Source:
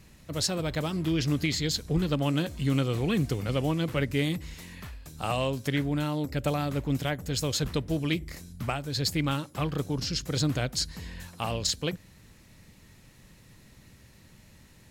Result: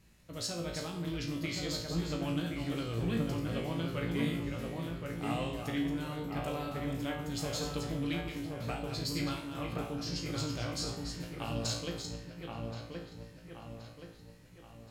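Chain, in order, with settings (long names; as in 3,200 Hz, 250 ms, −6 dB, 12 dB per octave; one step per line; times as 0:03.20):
delay that plays each chunk backwards 304 ms, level −7 dB
tuned comb filter 57 Hz, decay 0.52 s, harmonics all, mix 90%
delay with a low-pass on its return 1,074 ms, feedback 46%, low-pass 2,200 Hz, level −3.5 dB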